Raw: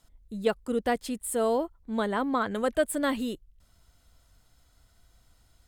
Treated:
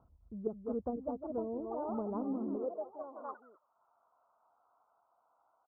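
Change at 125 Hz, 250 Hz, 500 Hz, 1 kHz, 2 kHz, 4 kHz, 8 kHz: -7.5 dB, -8.0 dB, -10.0 dB, -12.0 dB, under -30 dB, under -40 dB, under -40 dB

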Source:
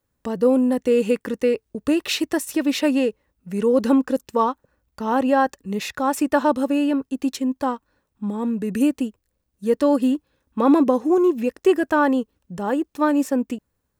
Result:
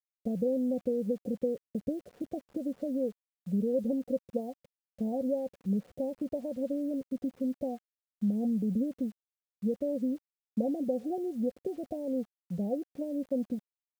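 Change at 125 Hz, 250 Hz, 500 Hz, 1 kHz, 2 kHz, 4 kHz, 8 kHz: no reading, -11.5 dB, -12.0 dB, -23.5 dB, under -35 dB, under -30 dB, under -25 dB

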